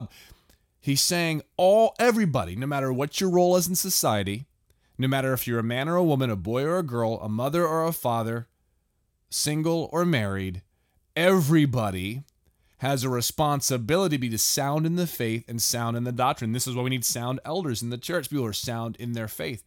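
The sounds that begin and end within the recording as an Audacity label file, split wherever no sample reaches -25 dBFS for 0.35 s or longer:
0.870000	4.360000	sound
5.000000	8.390000	sound
9.330000	10.490000	sound
11.170000	12.130000	sound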